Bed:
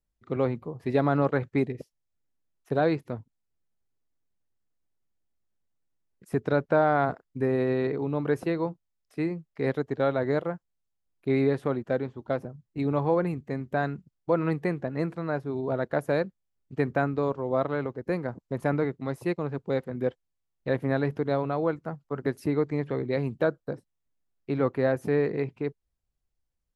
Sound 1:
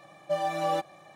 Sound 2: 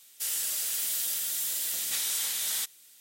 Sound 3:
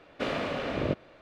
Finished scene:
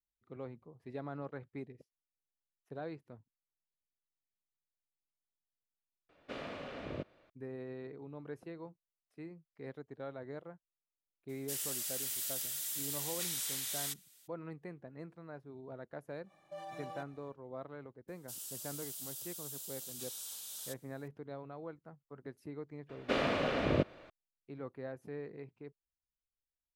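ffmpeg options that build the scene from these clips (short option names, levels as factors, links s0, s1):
-filter_complex "[3:a]asplit=2[s0][s1];[2:a]asplit=2[s2][s3];[0:a]volume=0.112[s4];[1:a]alimiter=level_in=1.06:limit=0.0631:level=0:latency=1:release=22,volume=0.944[s5];[s3]equalizer=f=2000:t=o:w=0.55:g=-14.5[s6];[s4]asplit=2[s7][s8];[s7]atrim=end=6.094[s9];[s0]atrim=end=1.21,asetpts=PTS-STARTPTS,volume=0.237[s10];[s8]atrim=start=7.296[s11];[s2]atrim=end=3,asetpts=PTS-STARTPTS,volume=0.398,afade=t=in:d=0.02,afade=t=out:st=2.98:d=0.02,adelay=11280[s12];[s5]atrim=end=1.15,asetpts=PTS-STARTPTS,volume=0.188,afade=t=in:d=0.1,afade=t=out:st=1.05:d=0.1,adelay=16220[s13];[s6]atrim=end=3,asetpts=PTS-STARTPTS,volume=0.188,afade=t=in:d=0.004:c=hsin,afade=t=out:st=2.996:d=0.004:c=hsin,adelay=18080[s14];[s1]atrim=end=1.21,asetpts=PTS-STARTPTS,volume=0.891,afade=t=in:d=0.004:c=hsin,afade=t=out:st=1.206:d=0.004:c=hsin,adelay=22890[s15];[s9][s10]acrossfade=d=0.004:c1=hsin:c2=hsin[s16];[s16][s11]acrossfade=d=0.004:c1=hsin:c2=hsin[s17];[s17][s12][s13][s14][s15]amix=inputs=5:normalize=0"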